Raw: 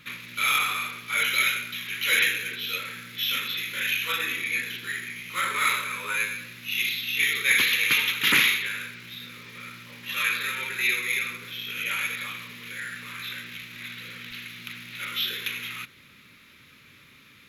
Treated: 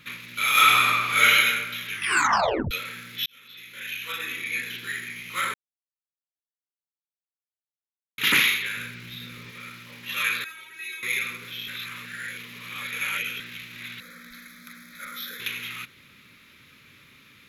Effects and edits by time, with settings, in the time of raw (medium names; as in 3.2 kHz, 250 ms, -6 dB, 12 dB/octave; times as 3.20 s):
0.51–1.32 s: reverb throw, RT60 1.3 s, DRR -8.5 dB
1.92 s: tape stop 0.79 s
3.26–4.81 s: fade in
5.54–8.18 s: mute
8.77–9.51 s: bass shelf 220 Hz +9 dB
10.44–11.03 s: feedback comb 320 Hz, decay 0.15 s, mix 100%
11.68–13.40 s: reverse
14.00–15.40 s: static phaser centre 570 Hz, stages 8